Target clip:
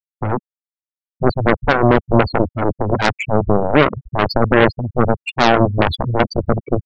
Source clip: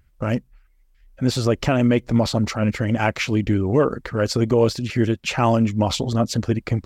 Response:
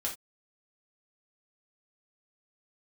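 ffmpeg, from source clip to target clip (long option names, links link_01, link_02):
-filter_complex "[0:a]aecho=1:1:238:0.119,acrossover=split=200|2500[link_01][link_02][link_03];[link_02]acrusher=bits=3:mix=0:aa=0.5[link_04];[link_01][link_04][link_03]amix=inputs=3:normalize=0,afftfilt=real='re*gte(hypot(re,im),0.178)':imag='im*gte(hypot(re,im),0.178)':win_size=1024:overlap=0.75,aeval=exprs='0.531*(cos(1*acos(clip(val(0)/0.531,-1,1)))-cos(1*PI/2))+0.211*(cos(7*acos(clip(val(0)/0.531,-1,1)))-cos(7*PI/2))':channel_layout=same,volume=3.5dB"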